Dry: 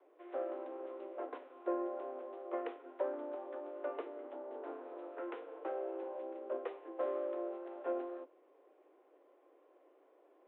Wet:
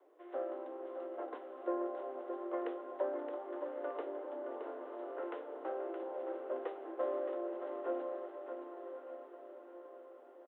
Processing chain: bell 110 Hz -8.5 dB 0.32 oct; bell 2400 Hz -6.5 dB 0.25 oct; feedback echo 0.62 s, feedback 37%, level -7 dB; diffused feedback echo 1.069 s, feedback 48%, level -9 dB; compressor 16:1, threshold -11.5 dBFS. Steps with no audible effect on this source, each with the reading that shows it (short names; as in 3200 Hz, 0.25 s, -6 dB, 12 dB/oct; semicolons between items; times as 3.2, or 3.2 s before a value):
bell 110 Hz: input band starts at 250 Hz; compressor, threshold -11.5 dBFS: input peak -23.0 dBFS